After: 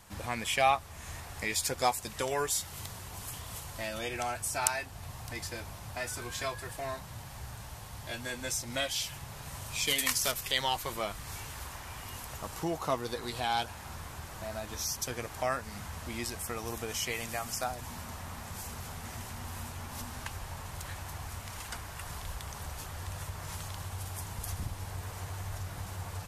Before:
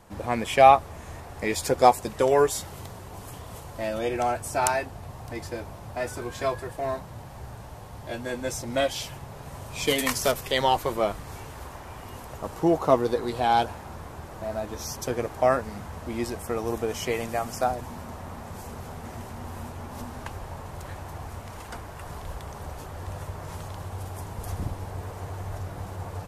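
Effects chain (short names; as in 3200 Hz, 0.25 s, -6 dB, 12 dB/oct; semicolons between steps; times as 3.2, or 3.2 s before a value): passive tone stack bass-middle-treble 5-5-5; in parallel at +2.5 dB: compressor, threshold -47 dBFS, peak gain reduction 19.5 dB; on the sum: gain +4 dB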